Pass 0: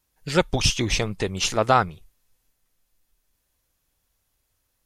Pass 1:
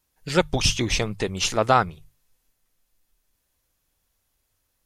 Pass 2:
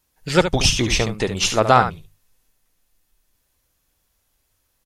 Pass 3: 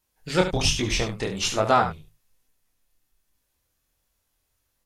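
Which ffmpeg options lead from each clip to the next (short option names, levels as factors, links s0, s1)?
-af "bandreject=f=50:t=h:w=6,bandreject=f=100:t=h:w=6,bandreject=f=150:t=h:w=6"
-af "aecho=1:1:71:0.335,volume=1.58"
-af "flanger=delay=19.5:depth=7.7:speed=1.2,volume=0.75"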